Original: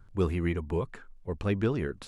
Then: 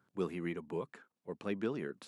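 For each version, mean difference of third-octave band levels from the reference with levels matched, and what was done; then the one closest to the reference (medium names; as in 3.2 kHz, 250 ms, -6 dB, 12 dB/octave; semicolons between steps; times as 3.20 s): 2.5 dB: high-pass 170 Hz 24 dB/octave; trim -7 dB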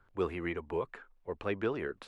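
4.0 dB: three-band isolator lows -15 dB, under 340 Hz, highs -13 dB, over 3.5 kHz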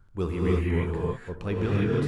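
7.5 dB: gated-style reverb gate 350 ms rising, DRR -4.5 dB; trim -2.5 dB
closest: first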